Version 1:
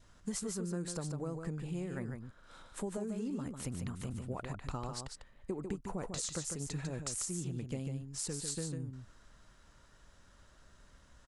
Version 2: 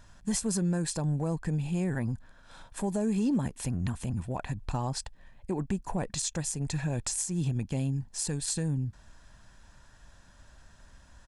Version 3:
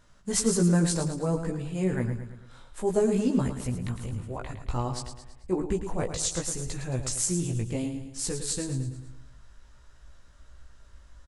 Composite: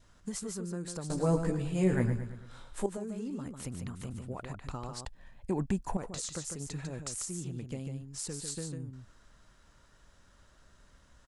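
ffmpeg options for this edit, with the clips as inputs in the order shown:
ffmpeg -i take0.wav -i take1.wav -i take2.wav -filter_complex "[0:a]asplit=3[link_01][link_02][link_03];[link_01]atrim=end=1.102[link_04];[2:a]atrim=start=1.098:end=2.862[link_05];[link_02]atrim=start=2.858:end=5.052[link_06];[1:a]atrim=start=5.048:end=5.972[link_07];[link_03]atrim=start=5.968[link_08];[link_04][link_05]acrossfade=duration=0.004:curve1=hsin:curve2=hsin[link_09];[link_09][link_06]acrossfade=duration=0.004:curve1=hsin:curve2=hsin[link_10];[link_10][link_07]acrossfade=duration=0.004:curve1=hsin:curve2=hsin[link_11];[link_11][link_08]acrossfade=duration=0.004:curve1=hsin:curve2=hsin" out.wav

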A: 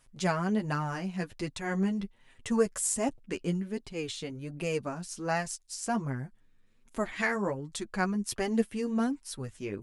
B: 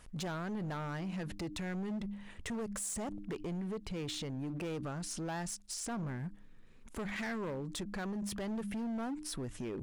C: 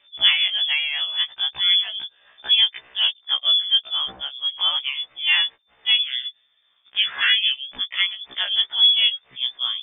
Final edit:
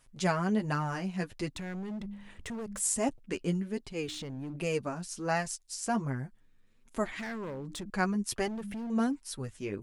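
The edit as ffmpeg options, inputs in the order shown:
ffmpeg -i take0.wav -i take1.wav -filter_complex "[1:a]asplit=4[link_01][link_02][link_03][link_04];[0:a]asplit=5[link_05][link_06][link_07][link_08][link_09];[link_05]atrim=end=1.57[link_10];[link_01]atrim=start=1.55:end=2.81[link_11];[link_06]atrim=start=2.79:end=4.082[link_12];[link_02]atrim=start=4.078:end=4.562[link_13];[link_07]atrim=start=4.558:end=7.192[link_14];[link_03]atrim=start=7.188:end=7.902[link_15];[link_08]atrim=start=7.898:end=8.482[link_16];[link_04]atrim=start=8.478:end=8.902[link_17];[link_09]atrim=start=8.898[link_18];[link_10][link_11]acrossfade=duration=0.02:curve1=tri:curve2=tri[link_19];[link_19][link_12]acrossfade=duration=0.02:curve1=tri:curve2=tri[link_20];[link_20][link_13]acrossfade=duration=0.004:curve1=hsin:curve2=hsin[link_21];[link_21][link_14]acrossfade=duration=0.004:curve1=hsin:curve2=hsin[link_22];[link_22][link_15]acrossfade=duration=0.004:curve1=hsin:curve2=hsin[link_23];[link_23][link_16]acrossfade=duration=0.004:curve1=hsin:curve2=hsin[link_24];[link_24][link_17]acrossfade=duration=0.004:curve1=hsin:curve2=hsin[link_25];[link_25][link_18]acrossfade=duration=0.004:curve1=hsin:curve2=hsin" out.wav

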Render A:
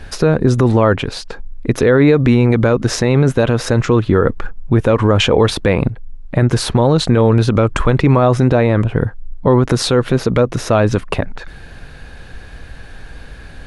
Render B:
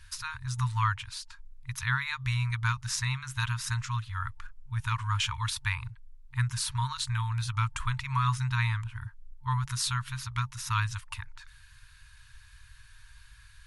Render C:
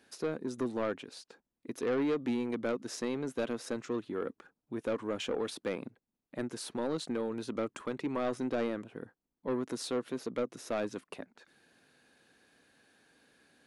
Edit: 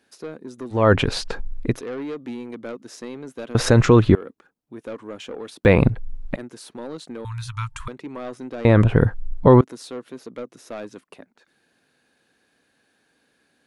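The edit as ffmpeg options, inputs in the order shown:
ffmpeg -i take0.wav -i take1.wav -i take2.wav -filter_complex "[0:a]asplit=4[link_01][link_02][link_03][link_04];[2:a]asplit=6[link_05][link_06][link_07][link_08][link_09][link_10];[link_05]atrim=end=0.94[link_11];[link_01]atrim=start=0.7:end=1.82[link_12];[link_06]atrim=start=1.58:end=3.552[link_13];[link_02]atrim=start=3.548:end=4.152[link_14];[link_07]atrim=start=4.148:end=5.652[link_15];[link_03]atrim=start=5.648:end=6.362[link_16];[link_08]atrim=start=6.358:end=7.252[link_17];[1:a]atrim=start=7.248:end=7.882[link_18];[link_09]atrim=start=7.878:end=8.652[link_19];[link_04]atrim=start=8.648:end=9.612[link_20];[link_10]atrim=start=9.608[link_21];[link_11][link_12]acrossfade=duration=0.24:curve1=tri:curve2=tri[link_22];[link_22][link_13]acrossfade=duration=0.24:curve1=tri:curve2=tri[link_23];[link_23][link_14]acrossfade=duration=0.004:curve1=hsin:curve2=hsin[link_24];[link_24][link_15]acrossfade=duration=0.004:curve1=hsin:curve2=hsin[link_25];[link_25][link_16]acrossfade=duration=0.004:curve1=hsin:curve2=hsin[link_26];[link_26][link_17]acrossfade=duration=0.004:curve1=hsin:curve2=hsin[link_27];[link_27][link_18]acrossfade=duration=0.004:curve1=hsin:curve2=hsin[link_28];[link_28][link_19]acrossfade=duration=0.004:curve1=hsin:curve2=hsin[link_29];[link_29][link_20]acrossfade=duration=0.004:curve1=hsin:curve2=hsin[link_30];[link_30][link_21]acrossfade=duration=0.004:curve1=hsin:curve2=hsin" out.wav

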